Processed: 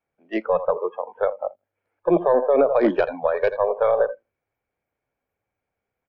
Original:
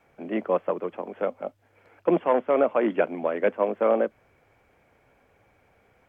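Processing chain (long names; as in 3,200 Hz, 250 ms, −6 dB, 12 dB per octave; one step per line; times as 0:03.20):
stylus tracing distortion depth 0.048 ms
0:02.16–0:02.79: parametric band 470 Hz +6.5 dB 1.1 octaves
repeating echo 82 ms, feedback 25%, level −14 dB
brickwall limiter −15 dBFS, peak gain reduction 9.5 dB
noise reduction from a noise print of the clip's start 27 dB
level +6 dB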